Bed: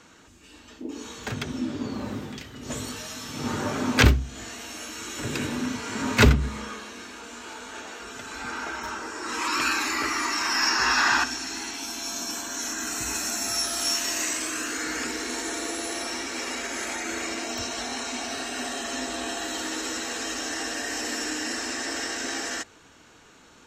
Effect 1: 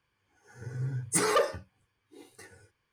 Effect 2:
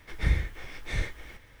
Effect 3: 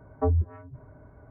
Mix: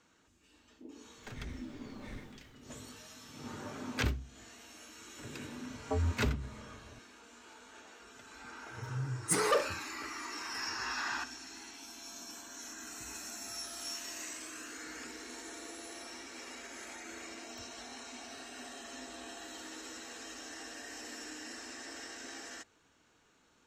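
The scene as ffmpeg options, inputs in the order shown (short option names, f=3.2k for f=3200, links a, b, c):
-filter_complex "[0:a]volume=-15.5dB[a];[2:a]asoftclip=type=hard:threshold=-23dB[b];[3:a]alimiter=limit=-22dB:level=0:latency=1:release=71[c];[b]atrim=end=1.6,asetpts=PTS-STARTPTS,volume=-17.5dB,afade=t=in:d=0.004:c=hsin,afade=t=out:st=1.596:d=0.004:c=hsin,adelay=1150[d];[c]atrim=end=1.3,asetpts=PTS-STARTPTS,volume=-4dB,afade=t=in:d=0.004:c=hsin,afade=t=out:st=1.296:d=0.004:c=hsin,adelay=250929S[e];[1:a]atrim=end=2.92,asetpts=PTS-STARTPTS,volume=-3.5dB,afade=t=in:d=0.004:c=hsin,afade=t=out:st=2.916:d=0.004:c=hsin,adelay=8160[f];[a][d][e][f]amix=inputs=4:normalize=0"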